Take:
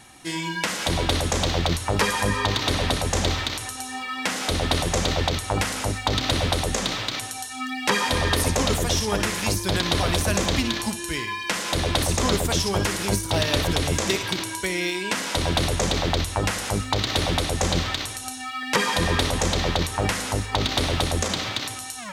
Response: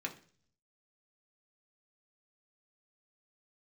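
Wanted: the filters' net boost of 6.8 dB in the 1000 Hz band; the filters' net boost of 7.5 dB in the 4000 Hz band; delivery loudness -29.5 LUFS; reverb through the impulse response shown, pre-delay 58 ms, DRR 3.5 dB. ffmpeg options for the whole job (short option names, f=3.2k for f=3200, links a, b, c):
-filter_complex "[0:a]equalizer=f=1k:t=o:g=8,equalizer=f=4k:t=o:g=8.5,asplit=2[a][b];[1:a]atrim=start_sample=2205,adelay=58[c];[b][c]afir=irnorm=-1:irlink=0,volume=-5dB[d];[a][d]amix=inputs=2:normalize=0,volume=-11.5dB"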